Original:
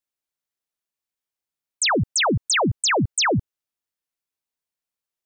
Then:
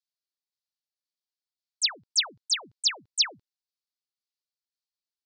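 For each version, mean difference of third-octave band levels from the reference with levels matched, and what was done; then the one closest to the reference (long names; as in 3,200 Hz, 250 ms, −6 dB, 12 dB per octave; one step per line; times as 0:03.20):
6.0 dB: resonant band-pass 4,500 Hz, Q 3.2
shaped tremolo saw down 1.9 Hz, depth 35%
level +3.5 dB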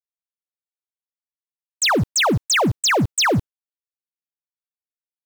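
11.5 dB: downward expander −23 dBFS
in parallel at −4 dB: log-companded quantiser 2 bits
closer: first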